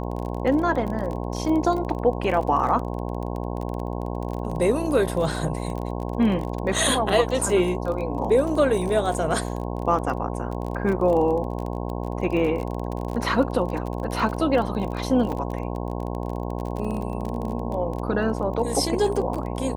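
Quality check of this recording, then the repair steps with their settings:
mains buzz 60 Hz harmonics 18 −29 dBFS
surface crackle 28 per second −29 dBFS
0:15.32–0:15.33: drop-out 5.8 ms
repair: click removal
hum removal 60 Hz, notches 18
repair the gap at 0:15.32, 5.8 ms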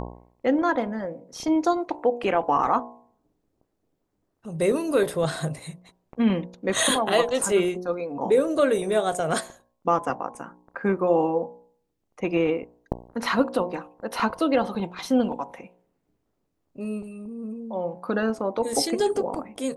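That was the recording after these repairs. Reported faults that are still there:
none of them is left

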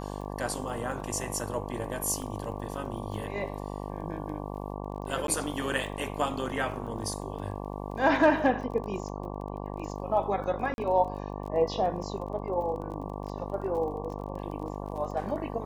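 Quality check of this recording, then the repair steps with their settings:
mains buzz 50 Hz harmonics 23 −37 dBFS
surface crackle 23 per second −39 dBFS
0:02.22: drop-out 2.2 ms
0:05.27–0:05.28: drop-out 12 ms
0:10.74–0:10.78: drop-out 41 ms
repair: click removal
hum removal 50 Hz, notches 23
repair the gap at 0:02.22, 2.2 ms
repair the gap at 0:05.27, 12 ms
repair the gap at 0:10.74, 41 ms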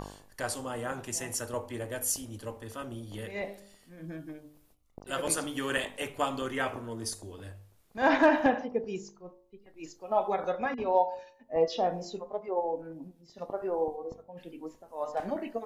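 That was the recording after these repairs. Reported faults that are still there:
none of them is left

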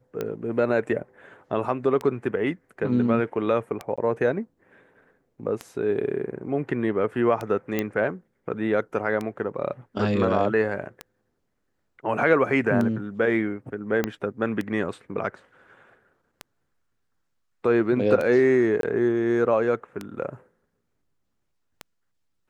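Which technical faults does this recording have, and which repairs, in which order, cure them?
scratch tick 33 1/3 rpm −16 dBFS
0:03.96–0:03.98: drop-out 16 ms
0:07.79: click −11 dBFS
0:14.04: click −10 dBFS
0:18.81–0:18.83: drop-out 22 ms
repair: click removal
repair the gap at 0:03.96, 16 ms
repair the gap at 0:18.81, 22 ms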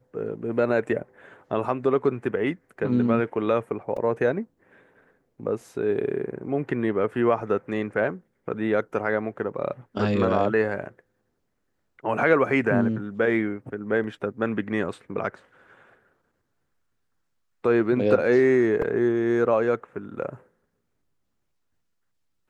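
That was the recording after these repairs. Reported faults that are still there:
0:14.04: click

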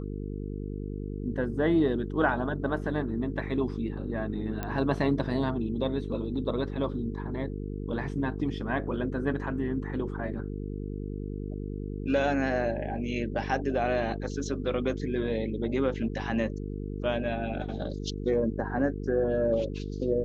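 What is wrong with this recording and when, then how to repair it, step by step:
mains buzz 50 Hz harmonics 9 −35 dBFS
0:04.63: click −18 dBFS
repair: click removal
hum removal 50 Hz, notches 9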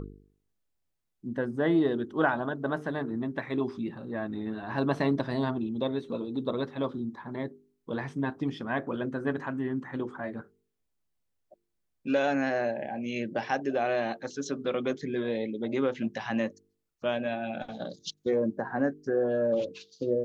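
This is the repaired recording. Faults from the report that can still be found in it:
0:04.63: click

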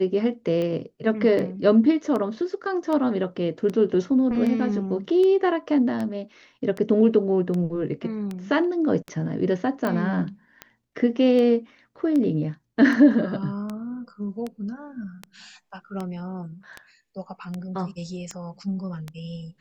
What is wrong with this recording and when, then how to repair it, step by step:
scratch tick 78 rpm −18 dBFS
0:09.87: click −15 dBFS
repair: click removal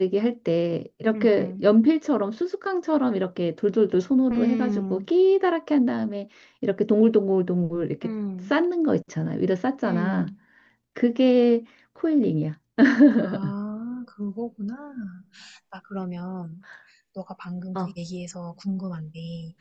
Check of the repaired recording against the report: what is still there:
none of them is left

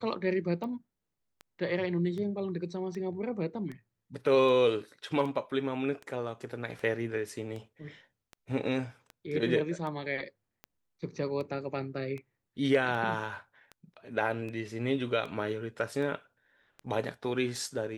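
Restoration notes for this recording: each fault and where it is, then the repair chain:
scratch tick 78 rpm −29 dBFS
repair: click removal

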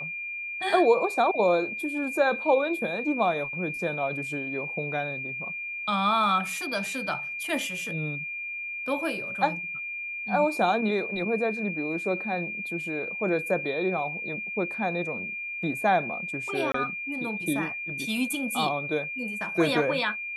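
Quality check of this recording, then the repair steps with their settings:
whistle 2,400 Hz −32 dBFS
0:16.72–0:16.74: drop-out 24 ms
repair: notch filter 2,400 Hz, Q 30
repair the gap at 0:16.72, 24 ms

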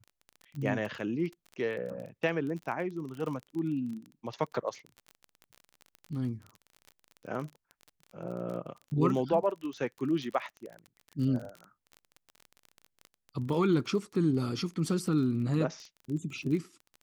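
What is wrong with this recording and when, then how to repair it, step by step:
surface crackle 30 per second −37 dBFS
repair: click removal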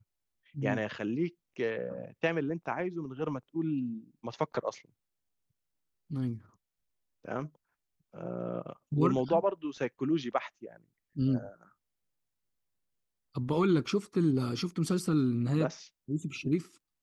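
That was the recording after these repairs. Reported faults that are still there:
none of them is left

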